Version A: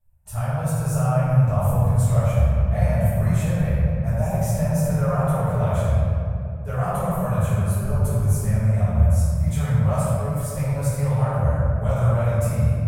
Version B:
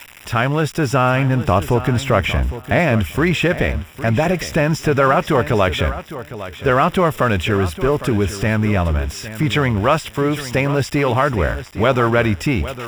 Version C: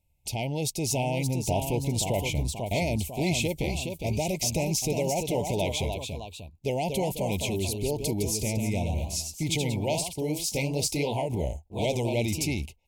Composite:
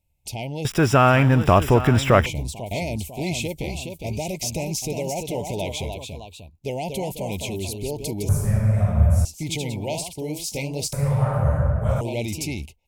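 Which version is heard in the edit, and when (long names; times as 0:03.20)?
C
0:00.65–0:02.26: punch in from B
0:08.29–0:09.25: punch in from A
0:10.93–0:12.01: punch in from A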